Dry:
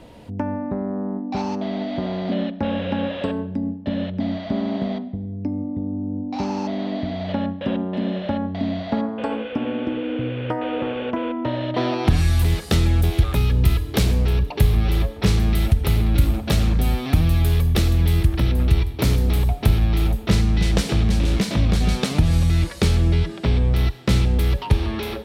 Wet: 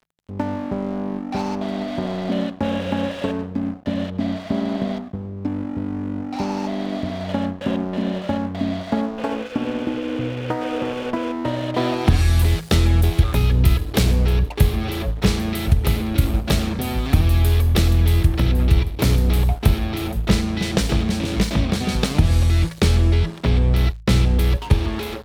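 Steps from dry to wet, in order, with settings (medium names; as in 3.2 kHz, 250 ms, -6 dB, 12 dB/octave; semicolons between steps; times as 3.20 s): crossover distortion -36.5 dBFS; de-hum 54.67 Hz, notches 3; trim +2.5 dB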